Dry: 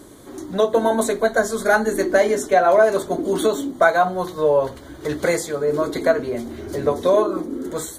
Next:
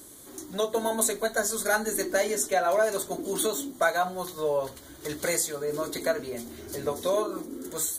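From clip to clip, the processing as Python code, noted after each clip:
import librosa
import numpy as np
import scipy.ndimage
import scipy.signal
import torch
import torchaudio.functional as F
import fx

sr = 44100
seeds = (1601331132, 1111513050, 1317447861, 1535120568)

y = scipy.signal.lfilter([1.0, -0.8], [1.0], x)
y = F.gain(torch.from_numpy(y), 3.5).numpy()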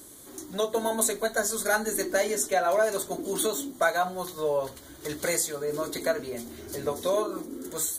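y = x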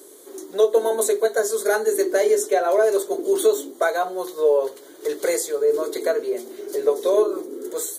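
y = fx.highpass_res(x, sr, hz=410.0, q=4.9)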